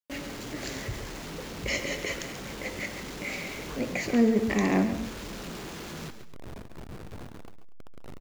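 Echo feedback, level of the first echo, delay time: no steady repeat, -11.5 dB, 0.136 s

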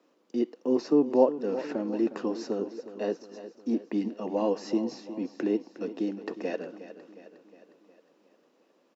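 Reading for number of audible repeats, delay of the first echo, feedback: 5, 0.36 s, 55%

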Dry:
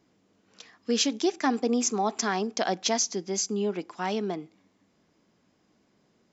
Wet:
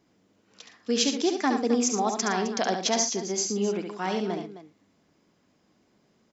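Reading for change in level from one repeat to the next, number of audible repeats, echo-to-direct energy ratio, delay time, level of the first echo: no steady repeat, 3, -4.5 dB, 70 ms, -6.0 dB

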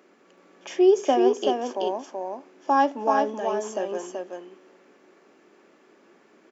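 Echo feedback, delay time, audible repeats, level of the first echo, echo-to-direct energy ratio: no steady repeat, 0.379 s, 1, -4.0 dB, -4.0 dB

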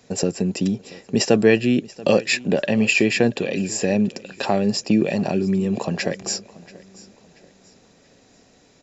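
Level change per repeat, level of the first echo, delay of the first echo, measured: -8.5 dB, -21.0 dB, 0.684 s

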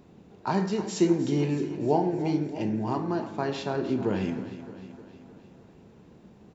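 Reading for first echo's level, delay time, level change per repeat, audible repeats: -13.5 dB, 0.309 s, -4.5 dB, 5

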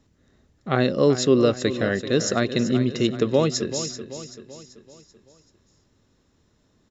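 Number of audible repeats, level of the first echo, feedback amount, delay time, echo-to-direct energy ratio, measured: 4, -11.5 dB, 48%, 0.385 s, -10.5 dB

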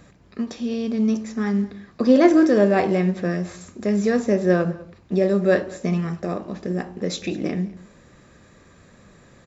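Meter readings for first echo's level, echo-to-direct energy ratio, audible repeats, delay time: -21.0 dB, -21.0 dB, 1, 0.201 s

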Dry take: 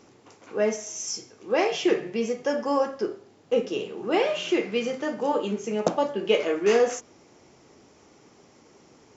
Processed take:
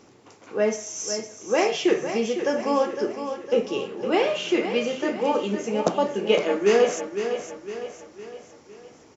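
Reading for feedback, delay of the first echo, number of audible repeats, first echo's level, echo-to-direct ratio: 47%, 0.508 s, 4, -9.0 dB, -8.0 dB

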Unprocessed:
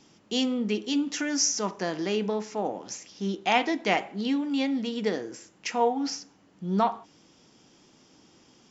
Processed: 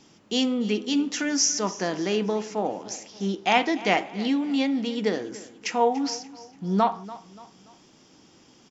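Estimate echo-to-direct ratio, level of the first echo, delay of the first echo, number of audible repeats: -17.0 dB, -18.0 dB, 0.289 s, 3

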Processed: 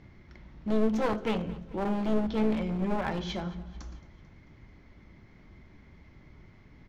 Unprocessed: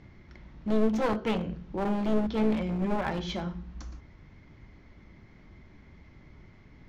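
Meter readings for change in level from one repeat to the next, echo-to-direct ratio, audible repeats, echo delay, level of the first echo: -5.0 dB, -18.5 dB, 3, 0.221 s, -20.0 dB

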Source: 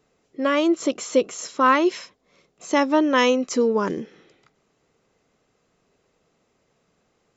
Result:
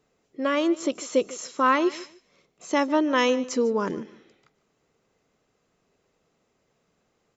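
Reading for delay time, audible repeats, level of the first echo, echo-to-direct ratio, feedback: 0.149 s, 2, -19.0 dB, -19.0 dB, 23%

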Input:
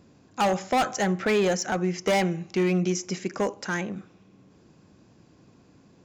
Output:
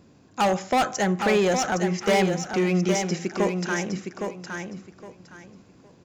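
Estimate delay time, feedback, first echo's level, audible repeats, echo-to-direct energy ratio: 0.813 s, 23%, -6.0 dB, 3, -6.0 dB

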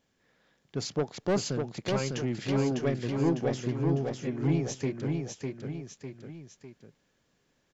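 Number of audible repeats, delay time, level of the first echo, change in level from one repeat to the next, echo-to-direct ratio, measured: 3, 0.602 s, -4.0 dB, -6.0 dB, -3.0 dB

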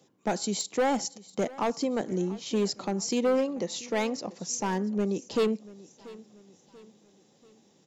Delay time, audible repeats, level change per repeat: 0.686 s, 3, -7.0 dB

